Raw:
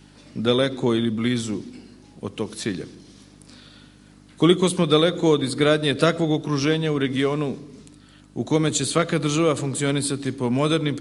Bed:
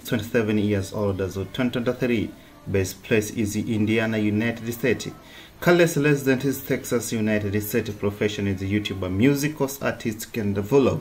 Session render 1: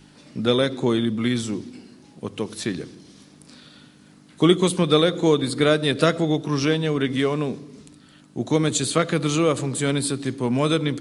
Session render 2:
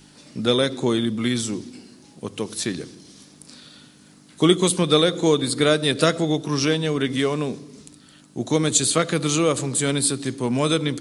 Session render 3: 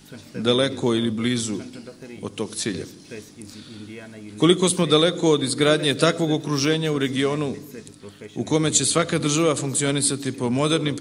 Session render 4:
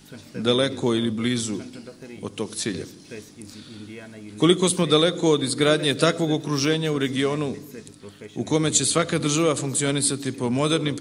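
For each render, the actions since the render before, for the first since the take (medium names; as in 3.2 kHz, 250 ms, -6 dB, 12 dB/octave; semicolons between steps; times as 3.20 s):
de-hum 50 Hz, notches 2
tone controls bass -1 dB, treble +7 dB
add bed -17 dB
trim -1 dB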